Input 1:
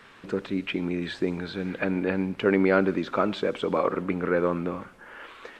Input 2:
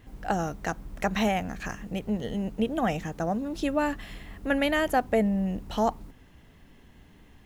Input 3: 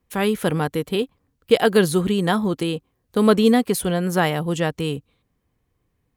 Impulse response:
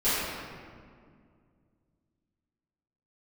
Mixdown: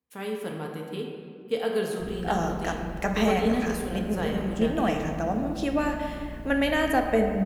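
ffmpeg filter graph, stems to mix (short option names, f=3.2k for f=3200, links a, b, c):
-filter_complex "[1:a]aeval=exprs='val(0)+0.01*(sin(2*PI*60*n/s)+sin(2*PI*2*60*n/s)/2+sin(2*PI*3*60*n/s)/3+sin(2*PI*4*60*n/s)/4+sin(2*PI*5*60*n/s)/5)':c=same,adelay=2000,volume=-1.5dB,asplit=2[a][b];[b]volume=-16dB[c];[2:a]highpass=100,volume=-16.5dB,asplit=2[d][e];[e]volume=-12.5dB[f];[3:a]atrim=start_sample=2205[g];[c][f]amix=inputs=2:normalize=0[h];[h][g]afir=irnorm=-1:irlink=0[i];[a][d][i]amix=inputs=3:normalize=0,bandreject=f=50:t=h:w=6,bandreject=f=100:t=h:w=6,bandreject=f=150:t=h:w=6,bandreject=f=200:t=h:w=6"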